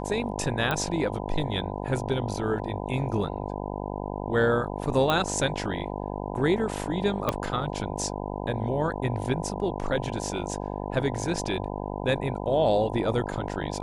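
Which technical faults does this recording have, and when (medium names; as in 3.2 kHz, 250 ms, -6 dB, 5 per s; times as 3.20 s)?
buzz 50 Hz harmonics 20 -33 dBFS
0.71 s: pop -13 dBFS
5.10 s: pop -12 dBFS
7.29 s: pop -10 dBFS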